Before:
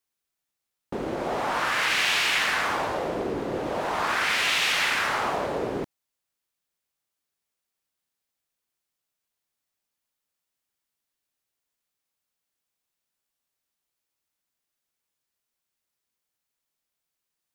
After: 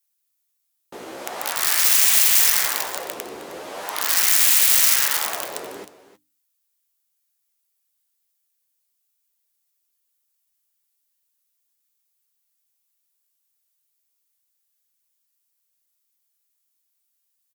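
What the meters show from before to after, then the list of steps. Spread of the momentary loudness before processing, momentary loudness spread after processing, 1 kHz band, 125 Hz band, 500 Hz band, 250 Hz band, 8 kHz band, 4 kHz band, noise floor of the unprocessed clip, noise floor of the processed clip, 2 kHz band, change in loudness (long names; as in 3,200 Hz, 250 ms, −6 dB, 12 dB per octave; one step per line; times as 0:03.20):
10 LU, 21 LU, −4.5 dB, below −10 dB, −6.0 dB, −9.0 dB, +17.0 dB, +3.0 dB, −85 dBFS, −74 dBFS, −2.5 dB, +9.0 dB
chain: flanger 0.51 Hz, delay 9.5 ms, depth 6.7 ms, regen +27%
mains-hum notches 50/100/150/200/250/300 Hz
harmonic generator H 2 −19 dB, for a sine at −13.5 dBFS
dynamic equaliser 1,900 Hz, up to +6 dB, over −46 dBFS, Q 6.4
wrap-around overflow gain 21.5 dB
RIAA equalisation recording
on a send: single-tap delay 312 ms −15.5 dB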